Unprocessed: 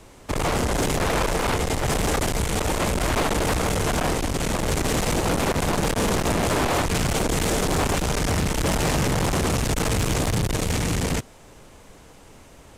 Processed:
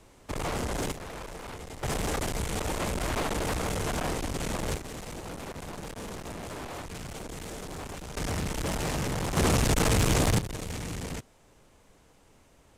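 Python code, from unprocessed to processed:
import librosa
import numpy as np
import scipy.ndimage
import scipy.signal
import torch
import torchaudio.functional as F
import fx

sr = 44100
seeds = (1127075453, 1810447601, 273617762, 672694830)

y = fx.gain(x, sr, db=fx.steps((0.0, -8.5), (0.92, -18.0), (1.83, -7.5), (4.77, -17.0), (8.17, -8.5), (9.37, -1.0), (10.39, -12.0)))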